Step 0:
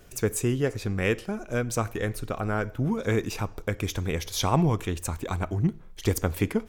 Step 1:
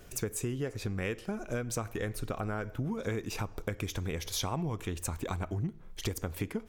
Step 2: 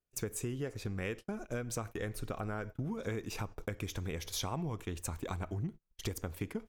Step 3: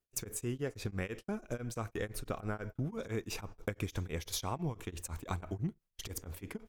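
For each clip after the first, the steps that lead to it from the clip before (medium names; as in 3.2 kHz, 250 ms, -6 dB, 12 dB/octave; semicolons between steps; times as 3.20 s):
compression, threshold -31 dBFS, peak gain reduction 13 dB
gate -40 dBFS, range -36 dB; trim -3.5 dB
tremolo of two beating tones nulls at 6 Hz; trim +3 dB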